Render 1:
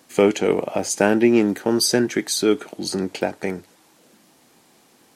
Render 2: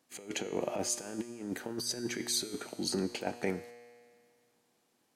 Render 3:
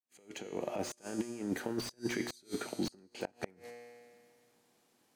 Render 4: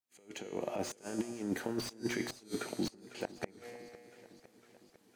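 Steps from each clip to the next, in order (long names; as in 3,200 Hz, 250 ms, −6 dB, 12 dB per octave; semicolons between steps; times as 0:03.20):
noise gate −43 dBFS, range −12 dB; compressor whose output falls as the input rises −23 dBFS, ratio −0.5; tuned comb filter 120 Hz, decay 2 s, mix 70%; level −2 dB
fade in at the beginning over 1.27 s; gate with flip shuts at −23 dBFS, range −30 dB; slew-rate limiting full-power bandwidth 35 Hz; level +2.5 dB
feedback echo with a swinging delay time 505 ms, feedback 65%, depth 127 cents, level −18 dB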